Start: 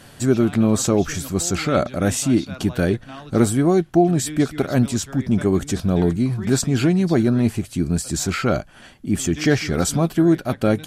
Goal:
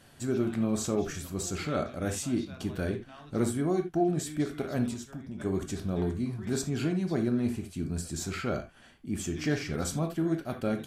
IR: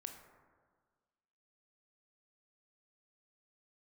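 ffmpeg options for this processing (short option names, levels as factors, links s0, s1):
-filter_complex "[0:a]asettb=1/sr,asplit=3[s0][s1][s2];[s0]atrim=end=4.934[s3];[s1]atrim=start=4.93:end=5.4,asetpts=PTS-STARTPTS,afade=t=in:d=0.004:c=qsin,afade=t=out:st=0.466:d=0.004:c=qsin,acompressor=threshold=0.0562:ratio=6[s4];[s2]atrim=start=5.396[s5];[s3][s4]acrossfade=d=0.004:c1=hsin:c2=qsin[s6];[s6][s5]acrossfade=d=0.004:c1=qsin:c2=hsin[s7];[1:a]atrim=start_sample=2205,atrim=end_sample=6174,asetrate=66150,aresample=44100[s8];[s7][s8]afir=irnorm=-1:irlink=0,volume=0.668"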